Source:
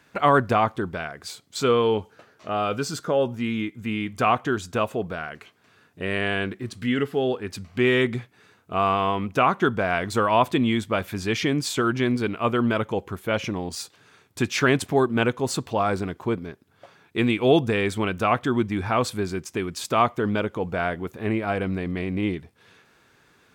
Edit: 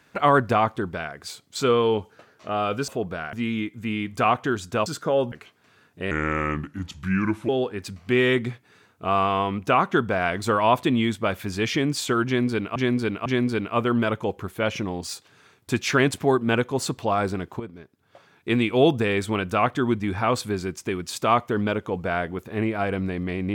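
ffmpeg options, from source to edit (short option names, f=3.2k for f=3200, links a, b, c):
-filter_complex "[0:a]asplit=10[a][b][c][d][e][f][g][h][i][j];[a]atrim=end=2.882[k];[b]atrim=start=4.868:end=5.322[l];[c]atrim=start=3.338:end=4.872[m];[d]atrim=start=2.878:end=3.342[n];[e]atrim=start=5.318:end=6.114[o];[f]atrim=start=6.11:end=7.17,asetpts=PTS-STARTPTS,asetrate=33957,aresample=44100,atrim=end_sample=60709,asetpts=PTS-STARTPTS[p];[g]atrim=start=7.166:end=12.442[q];[h]atrim=start=11.938:end=12.442[r];[i]atrim=start=11.938:end=16.28,asetpts=PTS-STARTPTS,afade=t=out:st=4.338:d=0.004:c=hsin:silence=0.237137[s];[j]atrim=start=16.28,asetpts=PTS-STARTPTS,afade=t=in:d=0.89:silence=0.237137[t];[k][l]acrossfade=d=0.004:c1=hsin:c2=hsin[u];[u][m]acrossfade=d=0.004:c1=hsin:c2=hsin[v];[v][n]acrossfade=d=0.004:c1=hsin:c2=hsin[w];[w][o]acrossfade=d=0.004:c1=hsin:c2=hsin[x];[x][p]acrossfade=d=0.004:c1=hsin:c2=hsin[y];[y][q]acrossfade=d=0.004:c1=hsin:c2=hsin[z];[z][r]acrossfade=d=0.004:c1=hsin:c2=hsin[aa];[s][t]concat=n=2:v=0:a=1[ab];[aa][ab]acrossfade=d=0.004:c1=hsin:c2=hsin"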